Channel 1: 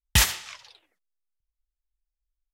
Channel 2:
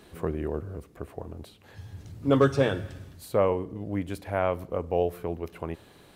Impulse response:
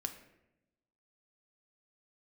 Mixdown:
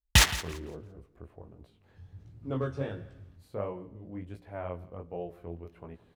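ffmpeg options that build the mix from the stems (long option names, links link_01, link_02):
-filter_complex "[0:a]adynamicsmooth=sensitivity=4.5:basefreq=680,volume=0.5dB,asplit=2[link_01][link_02];[link_02]volume=-15.5dB[link_03];[1:a]lowpass=frequency=2800:poles=1,lowshelf=frequency=150:gain=7,flanger=delay=16.5:depth=7.3:speed=1.4,adelay=200,volume=-9.5dB,asplit=2[link_04][link_05];[link_05]volume=-21.5dB[link_06];[link_03][link_06]amix=inputs=2:normalize=0,aecho=0:1:170|340|510|680:1|0.22|0.0484|0.0106[link_07];[link_01][link_04][link_07]amix=inputs=3:normalize=0,highshelf=frequency=12000:gain=3"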